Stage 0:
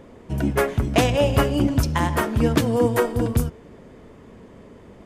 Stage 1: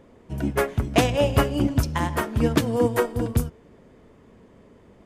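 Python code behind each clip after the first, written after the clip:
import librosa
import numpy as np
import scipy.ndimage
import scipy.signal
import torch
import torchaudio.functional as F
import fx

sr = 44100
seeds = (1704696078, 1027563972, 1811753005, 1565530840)

y = fx.upward_expand(x, sr, threshold_db=-27.0, expansion=1.5)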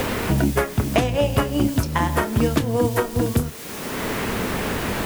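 y = fx.dmg_noise_colour(x, sr, seeds[0], colour='white', level_db=-44.0)
y = fx.doubler(y, sr, ms=28.0, db=-12.5)
y = fx.band_squash(y, sr, depth_pct=100)
y = F.gain(torch.from_numpy(y), 1.5).numpy()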